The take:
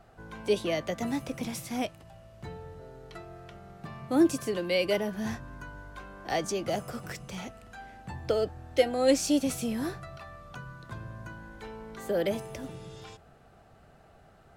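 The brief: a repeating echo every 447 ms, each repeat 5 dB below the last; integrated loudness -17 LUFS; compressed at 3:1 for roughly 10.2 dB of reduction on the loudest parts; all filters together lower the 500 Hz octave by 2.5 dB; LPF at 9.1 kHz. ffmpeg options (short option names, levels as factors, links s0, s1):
-af "lowpass=9100,equalizer=f=500:t=o:g=-3,acompressor=threshold=0.0224:ratio=3,aecho=1:1:447|894|1341|1788|2235|2682|3129:0.562|0.315|0.176|0.0988|0.0553|0.031|0.0173,volume=10.6"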